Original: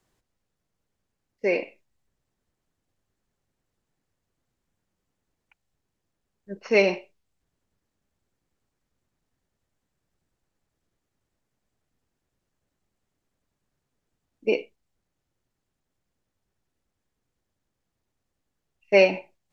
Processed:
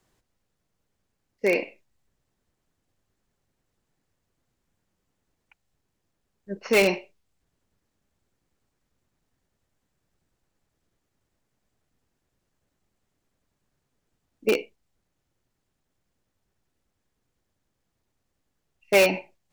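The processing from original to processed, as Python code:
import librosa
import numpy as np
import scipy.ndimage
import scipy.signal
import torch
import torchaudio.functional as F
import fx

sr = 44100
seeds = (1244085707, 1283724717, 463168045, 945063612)

p1 = fx.dynamic_eq(x, sr, hz=560.0, q=1.5, threshold_db=-31.0, ratio=4.0, max_db=-3)
p2 = (np.mod(10.0 ** (15.0 / 20.0) * p1 + 1.0, 2.0) - 1.0) / 10.0 ** (15.0 / 20.0)
y = p1 + (p2 * 10.0 ** (-8.0 / 20.0))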